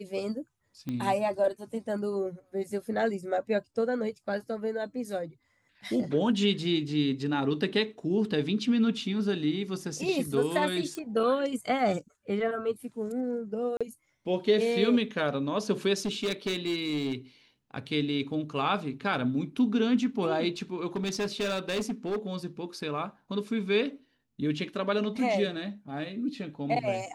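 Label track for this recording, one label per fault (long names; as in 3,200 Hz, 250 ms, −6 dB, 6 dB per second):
0.890000	0.890000	click −22 dBFS
10.950000	10.950000	click −23 dBFS
13.770000	13.810000	drop-out 36 ms
15.990000	17.150000	clipping −25.5 dBFS
20.960000	22.340000	clipping −26.5 dBFS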